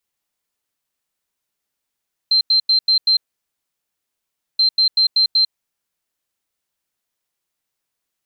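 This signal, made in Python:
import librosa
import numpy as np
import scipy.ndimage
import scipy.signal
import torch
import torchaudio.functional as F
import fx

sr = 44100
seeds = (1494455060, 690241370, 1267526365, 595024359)

y = fx.beep_pattern(sr, wave='sine', hz=4130.0, on_s=0.1, off_s=0.09, beeps=5, pause_s=1.42, groups=2, level_db=-11.0)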